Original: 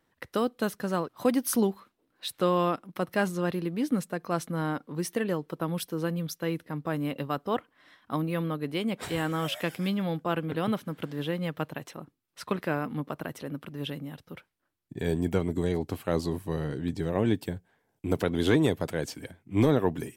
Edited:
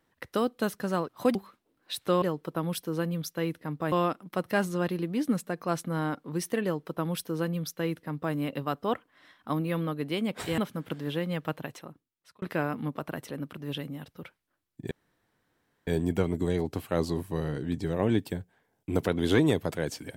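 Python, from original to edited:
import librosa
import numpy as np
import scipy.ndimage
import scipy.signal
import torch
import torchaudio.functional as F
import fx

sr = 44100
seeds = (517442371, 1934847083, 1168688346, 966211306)

y = fx.edit(x, sr, fx.cut(start_s=1.35, length_s=0.33),
    fx.duplicate(start_s=5.27, length_s=1.7, to_s=2.55),
    fx.cut(start_s=9.21, length_s=1.49),
    fx.fade_out_span(start_s=11.77, length_s=0.77),
    fx.insert_room_tone(at_s=15.03, length_s=0.96), tone=tone)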